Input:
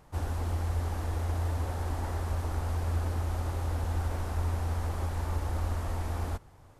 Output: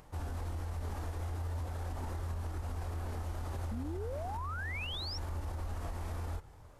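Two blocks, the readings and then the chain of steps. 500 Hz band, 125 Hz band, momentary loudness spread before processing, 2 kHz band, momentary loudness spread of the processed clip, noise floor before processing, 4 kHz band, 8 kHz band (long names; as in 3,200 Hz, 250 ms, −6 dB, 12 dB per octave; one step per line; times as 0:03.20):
−5.0 dB, −7.5 dB, 2 LU, −0.5 dB, 3 LU, −55 dBFS, +3.5 dB, −7.5 dB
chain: multi-voice chorus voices 4, 0.44 Hz, delay 26 ms, depth 3.2 ms
downward compressor, threshold −33 dBFS, peak gain reduction 7.5 dB
sound drawn into the spectrogram rise, 0:03.71–0:05.18, 210–5,700 Hz −38 dBFS
upward compression, threshold −56 dBFS
brickwall limiter −33 dBFS, peak gain reduction 8.5 dB
level +2 dB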